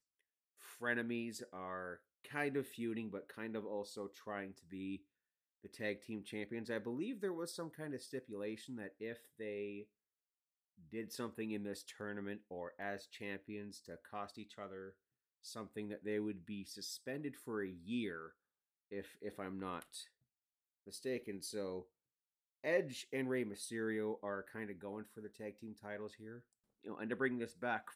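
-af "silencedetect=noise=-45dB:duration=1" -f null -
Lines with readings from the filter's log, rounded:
silence_start: 9.82
silence_end: 10.93 | silence_duration: 1.11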